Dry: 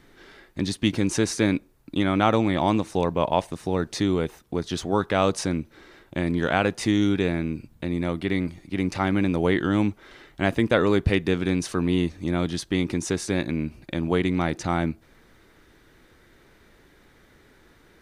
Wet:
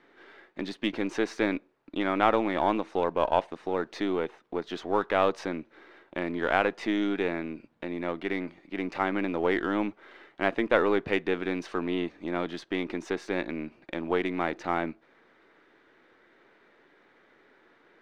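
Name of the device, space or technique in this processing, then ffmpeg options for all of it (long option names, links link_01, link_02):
crystal radio: -af "highpass=340,lowpass=2600,aeval=exprs='if(lt(val(0),0),0.708*val(0),val(0))':channel_layout=same"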